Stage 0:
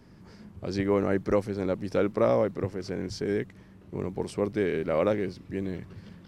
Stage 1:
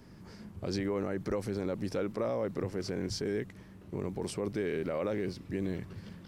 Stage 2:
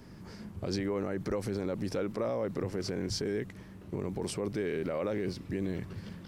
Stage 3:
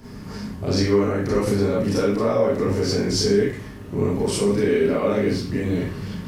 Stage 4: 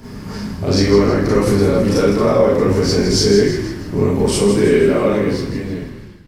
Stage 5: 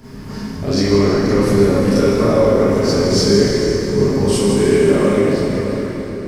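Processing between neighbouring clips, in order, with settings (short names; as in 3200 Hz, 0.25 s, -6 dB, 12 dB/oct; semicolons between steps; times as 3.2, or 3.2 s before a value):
limiter -23.5 dBFS, peak gain reduction 11.5 dB; high shelf 7100 Hz +5.5 dB
limiter -26.5 dBFS, peak gain reduction 3 dB; gain +3 dB
reverb RT60 0.40 s, pre-delay 29 ms, DRR -6.5 dB; gain +5 dB
ending faded out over 1.44 s; on a send: frequency-shifting echo 0.16 s, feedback 48%, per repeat -41 Hz, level -9 dB; on the sum: gain +6 dB
plate-style reverb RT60 4.7 s, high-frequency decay 0.75×, DRR -0.5 dB; gain -3.5 dB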